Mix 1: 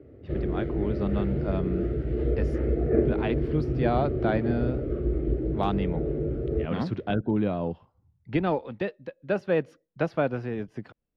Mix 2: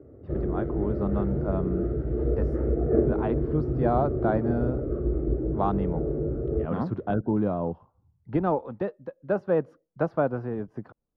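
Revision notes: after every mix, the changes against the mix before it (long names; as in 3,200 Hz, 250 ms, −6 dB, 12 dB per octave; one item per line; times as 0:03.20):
master: add high shelf with overshoot 1,700 Hz −12 dB, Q 1.5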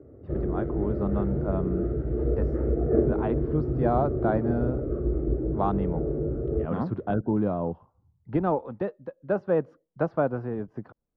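master: add high-frequency loss of the air 61 metres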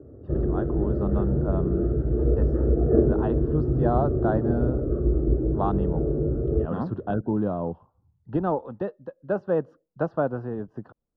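background: add low-shelf EQ 400 Hz +5 dB
master: add Butterworth band-reject 2,200 Hz, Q 3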